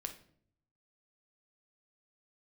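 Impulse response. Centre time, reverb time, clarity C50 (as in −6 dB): 11 ms, 0.60 s, 11.0 dB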